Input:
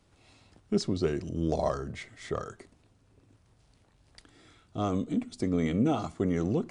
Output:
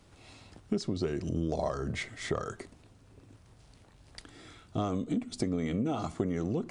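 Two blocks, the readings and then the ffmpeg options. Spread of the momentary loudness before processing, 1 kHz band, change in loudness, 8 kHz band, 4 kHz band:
9 LU, −2.5 dB, −3.0 dB, +0.5 dB, −0.5 dB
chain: -af "acompressor=threshold=-33dB:ratio=10,volume=6dB"

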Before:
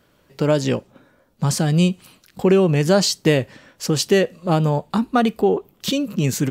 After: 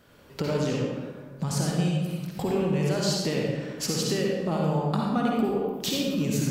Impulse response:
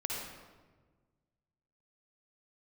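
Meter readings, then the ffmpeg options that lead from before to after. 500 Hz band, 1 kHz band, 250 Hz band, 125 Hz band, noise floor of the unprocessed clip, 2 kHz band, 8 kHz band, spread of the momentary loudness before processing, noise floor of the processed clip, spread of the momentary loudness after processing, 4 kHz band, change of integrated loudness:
−8.5 dB, −7.0 dB, −6.5 dB, −6.5 dB, −59 dBFS, −8.5 dB, −6.0 dB, 8 LU, −48 dBFS, 7 LU, −6.0 dB, −7.5 dB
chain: -filter_complex "[0:a]acompressor=threshold=-28dB:ratio=6[link_01];[1:a]atrim=start_sample=2205[link_02];[link_01][link_02]afir=irnorm=-1:irlink=0,volume=1.5dB"

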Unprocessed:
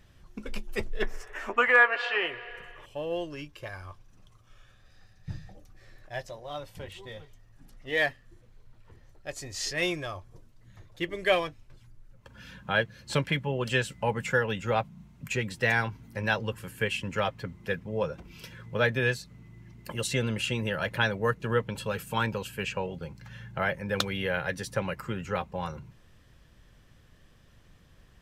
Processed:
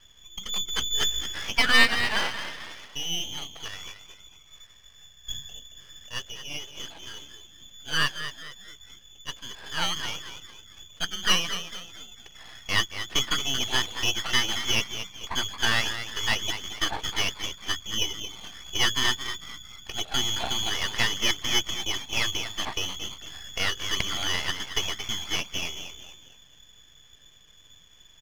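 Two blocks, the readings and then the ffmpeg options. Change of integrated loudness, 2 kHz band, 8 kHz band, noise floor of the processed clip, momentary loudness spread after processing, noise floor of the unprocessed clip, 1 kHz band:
+2.5 dB, +0.5 dB, +12.0 dB, −54 dBFS, 18 LU, −58 dBFS, −1.0 dB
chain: -filter_complex "[0:a]asplit=5[link_01][link_02][link_03][link_04][link_05];[link_02]adelay=224,afreqshift=-87,volume=-10dB[link_06];[link_03]adelay=448,afreqshift=-174,volume=-18dB[link_07];[link_04]adelay=672,afreqshift=-261,volume=-25.9dB[link_08];[link_05]adelay=896,afreqshift=-348,volume=-33.9dB[link_09];[link_01][link_06][link_07][link_08][link_09]amix=inputs=5:normalize=0,lowpass=frequency=3000:width_type=q:width=0.5098,lowpass=frequency=3000:width_type=q:width=0.6013,lowpass=frequency=3000:width_type=q:width=0.9,lowpass=frequency=3000:width_type=q:width=2.563,afreqshift=-3500,aeval=exprs='max(val(0),0)':channel_layout=same,volume=5.5dB"

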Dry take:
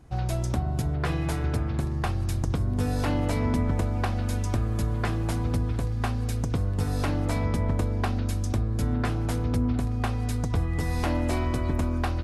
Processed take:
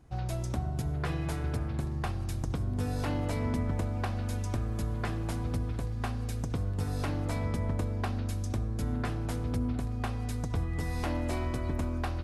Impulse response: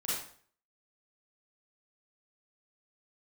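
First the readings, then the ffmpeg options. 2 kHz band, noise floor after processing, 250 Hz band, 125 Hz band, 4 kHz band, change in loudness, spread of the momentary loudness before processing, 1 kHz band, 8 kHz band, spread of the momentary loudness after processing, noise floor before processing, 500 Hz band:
−5.5 dB, −34 dBFS, −6.0 dB, −5.5 dB, −5.5 dB, −5.5 dB, 2 LU, −5.5 dB, −5.5 dB, 3 LU, −28 dBFS, −5.5 dB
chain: -filter_complex "[0:a]asplit=2[link_01][link_02];[1:a]atrim=start_sample=2205,asetrate=25578,aresample=44100[link_03];[link_02][link_03]afir=irnorm=-1:irlink=0,volume=-25.5dB[link_04];[link_01][link_04]amix=inputs=2:normalize=0,volume=-6dB"

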